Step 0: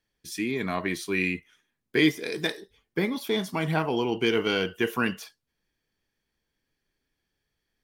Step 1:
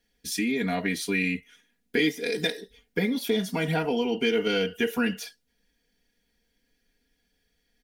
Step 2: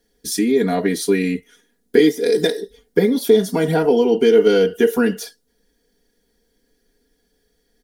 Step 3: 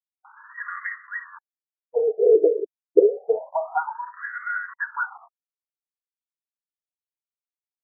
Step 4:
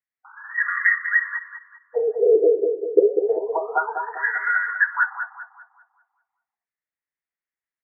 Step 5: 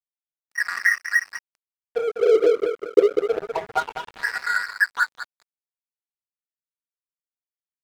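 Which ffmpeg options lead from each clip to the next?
ffmpeg -i in.wav -af "equalizer=frequency=1100:width=4:gain=-14.5,aecho=1:1:4.2:0.98,acompressor=threshold=-32dB:ratio=2,volume=4.5dB" out.wav
ffmpeg -i in.wav -af "equalizer=frequency=100:width_type=o:width=0.67:gain=-6,equalizer=frequency=400:width_type=o:width=0.67:gain=9,equalizer=frequency=2500:width_type=o:width=0.67:gain=-11,equalizer=frequency=10000:width_type=o:width=0.67:gain=3,volume=7dB" out.wav
ffmpeg -i in.wav -af "bandreject=frequency=50:width_type=h:width=6,bandreject=frequency=100:width_type=h:width=6,bandreject=frequency=150:width_type=h:width=6,bandreject=frequency=200:width_type=h:width=6,bandreject=frequency=250:width_type=h:width=6,aeval=exprs='val(0)*gte(abs(val(0)),0.0335)':channel_layout=same,afftfilt=real='re*between(b*sr/1024,440*pow(1500/440,0.5+0.5*sin(2*PI*0.28*pts/sr))/1.41,440*pow(1500/440,0.5+0.5*sin(2*PI*0.28*pts/sr))*1.41)':imag='im*between(b*sr/1024,440*pow(1500/440,0.5+0.5*sin(2*PI*0.28*pts/sr))/1.41,440*pow(1500/440,0.5+0.5*sin(2*PI*0.28*pts/sr))*1.41)':win_size=1024:overlap=0.75,volume=2dB" out.wav
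ffmpeg -i in.wav -filter_complex "[0:a]lowpass=frequency=1900:width_type=q:width=5.7,asplit=2[link_01][link_02];[link_02]adelay=197,lowpass=frequency=1300:poles=1,volume=-5.5dB,asplit=2[link_03][link_04];[link_04]adelay=197,lowpass=frequency=1300:poles=1,volume=0.54,asplit=2[link_05][link_06];[link_06]adelay=197,lowpass=frequency=1300:poles=1,volume=0.54,asplit=2[link_07][link_08];[link_08]adelay=197,lowpass=frequency=1300:poles=1,volume=0.54,asplit=2[link_09][link_10];[link_10]adelay=197,lowpass=frequency=1300:poles=1,volume=0.54,asplit=2[link_11][link_12];[link_12]adelay=197,lowpass=frequency=1300:poles=1,volume=0.54,asplit=2[link_13][link_14];[link_14]adelay=197,lowpass=frequency=1300:poles=1,volume=0.54[link_15];[link_03][link_05][link_07][link_09][link_11][link_13][link_15]amix=inputs=7:normalize=0[link_16];[link_01][link_16]amix=inputs=2:normalize=0,volume=-1dB" out.wav
ffmpeg -i in.wav -af "aeval=exprs='sgn(val(0))*max(abs(val(0))-0.0398,0)':channel_layout=same,volume=1dB" out.wav

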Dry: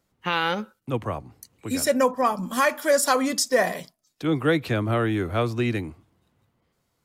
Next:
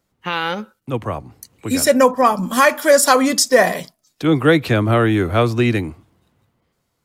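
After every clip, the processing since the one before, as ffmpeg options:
ffmpeg -i in.wav -af "dynaudnorm=framelen=220:gausssize=11:maxgain=7dB,volume=2dB" out.wav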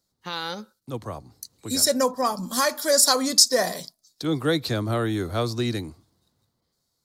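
ffmpeg -i in.wav -af "highshelf=frequency=3400:width_type=q:width=3:gain=7.5,volume=-9.5dB" out.wav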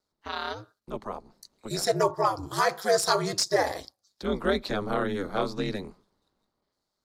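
ffmpeg -i in.wav -filter_complex "[0:a]asplit=2[link_01][link_02];[link_02]highpass=frequency=720:poles=1,volume=10dB,asoftclip=type=tanh:threshold=-1dB[link_03];[link_01][link_03]amix=inputs=2:normalize=0,lowpass=frequency=1400:poles=1,volume=-6dB,aeval=exprs='val(0)*sin(2*PI*100*n/s)':channel_layout=same" out.wav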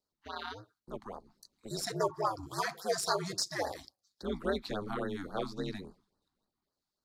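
ffmpeg -i in.wav -af "afftfilt=real='re*(1-between(b*sr/1024,440*pow(2800/440,0.5+0.5*sin(2*PI*3.6*pts/sr))/1.41,440*pow(2800/440,0.5+0.5*sin(2*PI*3.6*pts/sr))*1.41))':imag='im*(1-between(b*sr/1024,440*pow(2800/440,0.5+0.5*sin(2*PI*3.6*pts/sr))/1.41,440*pow(2800/440,0.5+0.5*sin(2*PI*3.6*pts/sr))*1.41))':win_size=1024:overlap=0.75,volume=-7dB" out.wav

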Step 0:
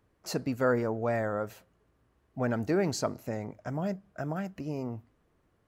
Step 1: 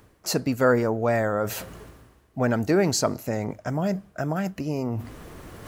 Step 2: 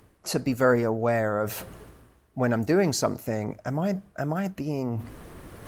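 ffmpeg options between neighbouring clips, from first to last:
ffmpeg -i in.wav -af "highshelf=frequency=4300:gain=6.5,areverse,acompressor=mode=upward:threshold=-30dB:ratio=2.5,areverse,volume=6.5dB" out.wav
ffmpeg -i in.wav -af "volume=-1dB" -ar 48000 -c:a libopus -b:a 32k out.opus

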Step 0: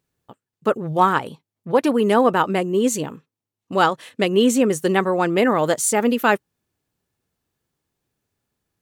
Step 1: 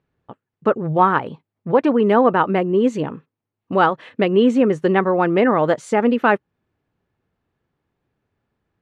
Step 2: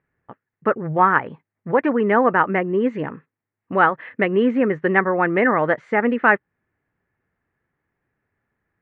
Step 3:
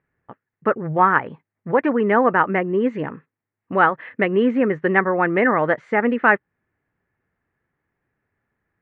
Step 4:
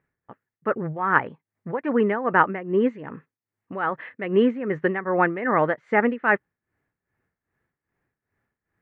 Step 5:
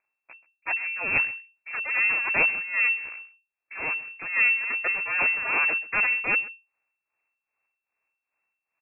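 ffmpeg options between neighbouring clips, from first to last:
ffmpeg -i in.wav -filter_complex "[0:a]lowpass=2200,asplit=2[link_01][link_02];[link_02]acompressor=threshold=-25dB:ratio=6,volume=-1.5dB[link_03];[link_01][link_03]amix=inputs=2:normalize=0" out.wav
ffmpeg -i in.wav -af "lowpass=frequency=1900:width_type=q:width=3.6,volume=-3.5dB" out.wav
ffmpeg -i in.wav -af anull out.wav
ffmpeg -i in.wav -af "tremolo=f=2.5:d=0.79" out.wav
ffmpeg -i in.wav -af "aresample=8000,aeval=exprs='abs(val(0))':channel_layout=same,aresample=44100,aecho=1:1:131:0.1,lowpass=frequency=2300:width_type=q:width=0.5098,lowpass=frequency=2300:width_type=q:width=0.6013,lowpass=frequency=2300:width_type=q:width=0.9,lowpass=frequency=2300:width_type=q:width=2.563,afreqshift=-2700,volume=-3dB" out.wav

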